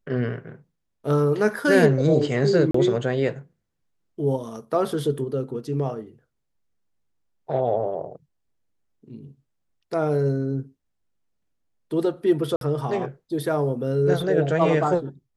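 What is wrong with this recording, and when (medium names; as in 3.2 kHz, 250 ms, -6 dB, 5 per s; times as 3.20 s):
2.71–2.74 s: dropout 34 ms
12.56–12.61 s: dropout 52 ms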